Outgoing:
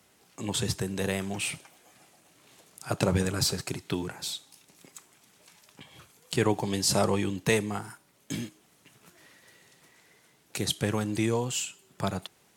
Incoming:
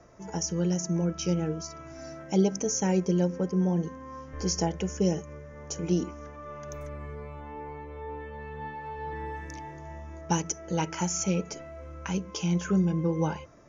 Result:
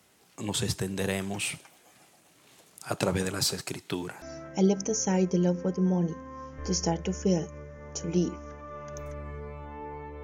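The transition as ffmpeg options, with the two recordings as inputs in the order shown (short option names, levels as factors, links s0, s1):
-filter_complex "[0:a]asettb=1/sr,asplit=3[s0][s1][s2];[s0]atrim=end=2.824[s3];[s1]atrim=start=2.82:end=4.22,asetpts=PTS-STARTPTS,afade=t=in:d=0.004:c=qsin,afade=t=out:st=1.396:d=0.004:c=qsin,lowshelf=f=140:g=-8.5[s4];[s2]atrim=start=4.216[s5];[s3][s4]acrossfade=d=0.004:c1=hsin:c2=qsin[s6];[s6][s5]acrossfade=d=0.004:c1=qsin:c2=hsin,apad=whole_dur=10.23,atrim=end=10.23,atrim=end=4.222[s7];[1:a]atrim=start=1.968:end=7.98[s8];[s7][s8]acrossfade=d=0.004:c1=hsin:c2=hsin"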